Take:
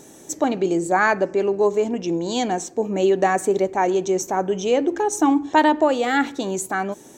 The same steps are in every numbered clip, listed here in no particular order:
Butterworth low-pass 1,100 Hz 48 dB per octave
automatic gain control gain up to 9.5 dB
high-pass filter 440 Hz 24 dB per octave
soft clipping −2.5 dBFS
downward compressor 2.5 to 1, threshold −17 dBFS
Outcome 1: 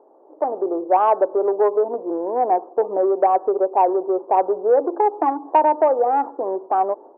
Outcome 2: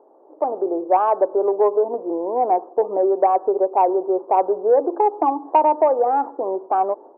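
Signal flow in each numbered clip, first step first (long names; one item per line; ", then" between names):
Butterworth low-pass, then downward compressor, then automatic gain control, then soft clipping, then high-pass filter
downward compressor, then Butterworth low-pass, then automatic gain control, then high-pass filter, then soft clipping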